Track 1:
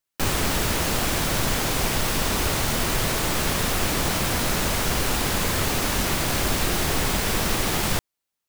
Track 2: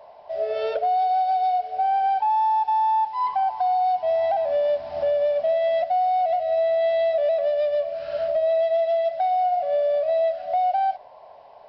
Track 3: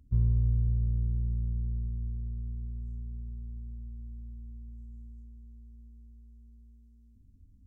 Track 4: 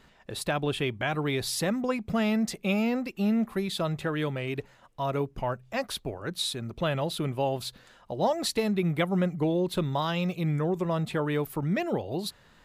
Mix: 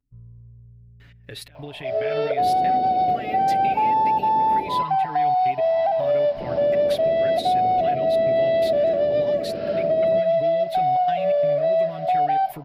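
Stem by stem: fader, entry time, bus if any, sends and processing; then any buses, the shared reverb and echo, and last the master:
-1.0 dB, 2.20 s, muted 4.83–6.40 s, no bus, no send, high-pass 170 Hz 12 dB/octave; steep low-pass 680 Hz 96 dB/octave
+1.0 dB, 1.55 s, no bus, no send, peaking EQ 180 Hz +14 dB 1.5 oct
-16.5 dB, 0.00 s, bus A, no send, none
+1.5 dB, 1.00 s, bus A, no send, graphic EQ 1/2/8 kHz -10/+9/-10 dB; peak limiter -22 dBFS, peak gain reduction 11.5 dB; trance gate "x.xx.xxxxxxx" 128 bpm -24 dB
bus A: 0.0 dB, comb 7.1 ms, depth 92%; compression, threshold -32 dBFS, peak gain reduction 11.5 dB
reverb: none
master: bass shelf 410 Hz -4 dB

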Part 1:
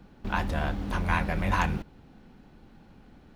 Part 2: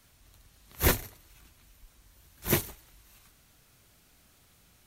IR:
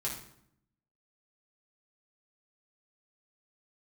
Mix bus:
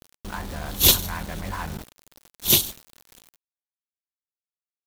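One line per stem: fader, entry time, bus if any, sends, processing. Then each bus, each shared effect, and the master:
-6.5 dB, 0.00 s, no send, low-pass 2.2 kHz 24 dB/octave; hum notches 60/120/180/240/300/360/420/480/540 Hz; level flattener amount 50%
+1.0 dB, 0.00 s, no send, resonant high shelf 2.5 kHz +10.5 dB, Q 3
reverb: none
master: small samples zeroed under -34.5 dBFS

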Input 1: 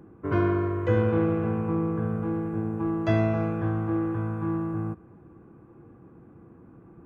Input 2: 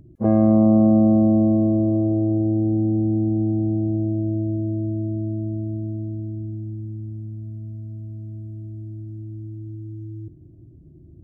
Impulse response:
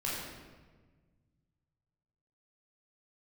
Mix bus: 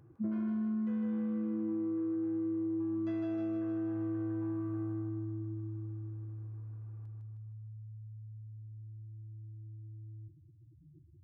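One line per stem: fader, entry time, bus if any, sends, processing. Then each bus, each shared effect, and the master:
-12.5 dB, 0.00 s, no send, echo send -3 dB, none
+1.5 dB, 0.00 s, no send, no echo send, spectral contrast enhancement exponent 3.9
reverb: none
echo: feedback delay 156 ms, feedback 53%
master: high-pass 520 Hz 6 dB/octave; compression, threshold -33 dBFS, peak gain reduction 11.5 dB

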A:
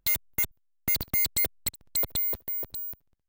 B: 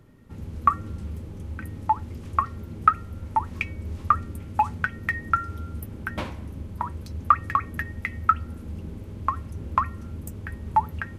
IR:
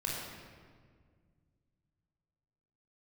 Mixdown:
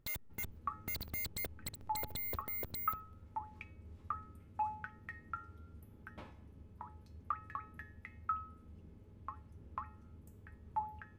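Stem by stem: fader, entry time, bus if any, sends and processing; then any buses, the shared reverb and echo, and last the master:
+3.0 dB, 0.00 s, no send, peak limiter -28 dBFS, peak gain reduction 10.5 dB; saturation -35 dBFS, distortion -15 dB
-7.0 dB, 0.00 s, no send, feedback comb 430 Hz, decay 0.48 s, mix 80%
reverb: none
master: treble shelf 3.6 kHz -7 dB

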